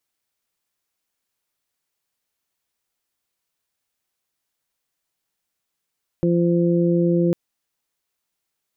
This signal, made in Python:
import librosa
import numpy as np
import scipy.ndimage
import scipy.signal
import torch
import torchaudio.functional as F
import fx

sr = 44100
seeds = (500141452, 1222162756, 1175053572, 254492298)

y = fx.additive_steady(sr, length_s=1.1, hz=172.0, level_db=-18, upper_db=(-1, -6.5))